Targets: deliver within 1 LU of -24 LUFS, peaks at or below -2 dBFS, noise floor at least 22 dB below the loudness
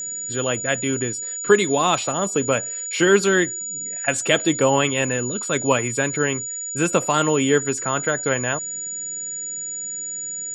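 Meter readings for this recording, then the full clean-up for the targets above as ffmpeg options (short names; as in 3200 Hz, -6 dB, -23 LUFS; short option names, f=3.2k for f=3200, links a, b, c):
steady tone 6900 Hz; tone level -27 dBFS; loudness -21.0 LUFS; peak -2.0 dBFS; loudness target -24.0 LUFS
-> -af "bandreject=f=6.9k:w=30"
-af "volume=-3dB"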